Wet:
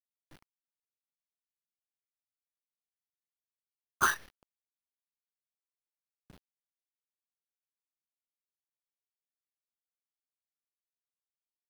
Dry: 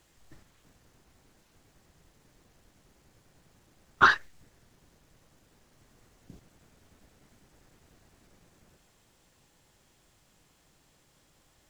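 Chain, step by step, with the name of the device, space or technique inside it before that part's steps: early 8-bit sampler (sample-rate reducer 7.6 kHz, jitter 0%; bit crusher 8-bit); trim -7.5 dB

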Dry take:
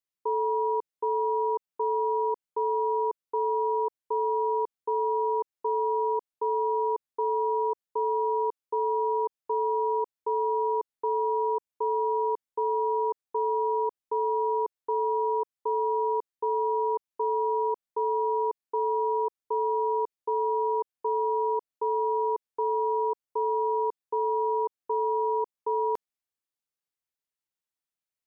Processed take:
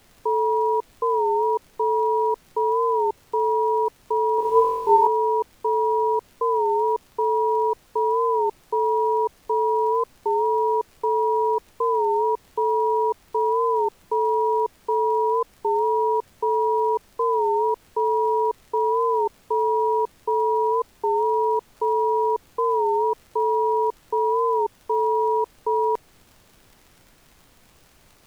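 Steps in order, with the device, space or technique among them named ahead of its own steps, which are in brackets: warped LP (warped record 33 1/3 rpm, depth 100 cents; crackle; pink noise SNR 33 dB); 4.36–5.07 s: flutter echo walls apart 3.8 m, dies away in 1.1 s; trim +5.5 dB

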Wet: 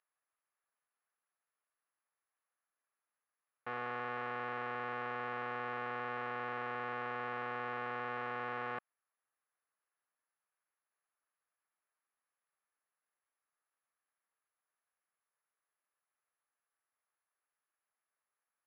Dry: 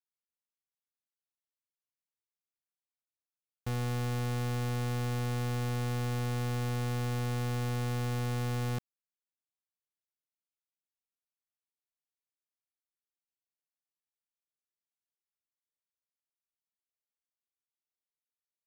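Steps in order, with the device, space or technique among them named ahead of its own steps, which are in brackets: toy sound module (decimation joined by straight lines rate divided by 8×; class-D stage that switches slowly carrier 11 kHz; cabinet simulation 560–3800 Hz, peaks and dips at 1.2 kHz +6 dB, 1.7 kHz +5 dB, 3.5 kHz -6 dB); trim +1.5 dB

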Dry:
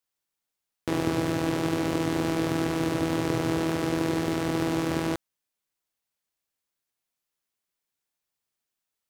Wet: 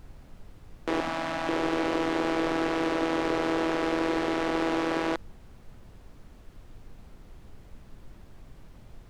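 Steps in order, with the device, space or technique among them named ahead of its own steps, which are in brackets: aircraft cabin announcement (band-pass 420–4100 Hz; saturation -20.5 dBFS, distortion -19 dB; brown noise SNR 15 dB); 1.00–1.49 s: Chebyshev band-stop 270–620 Hz, order 2; trim +5 dB

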